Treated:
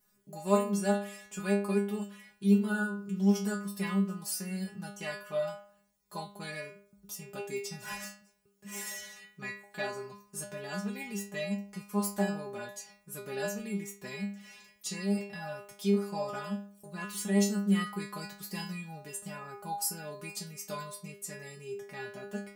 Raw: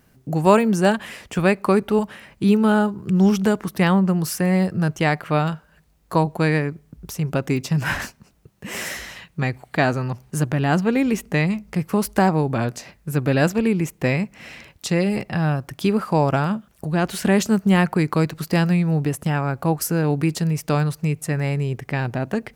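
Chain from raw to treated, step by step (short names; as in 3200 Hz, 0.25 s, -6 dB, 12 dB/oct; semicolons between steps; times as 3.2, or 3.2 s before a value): tone controls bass -2 dB, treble +9 dB; metallic resonator 200 Hz, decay 0.51 s, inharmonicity 0.002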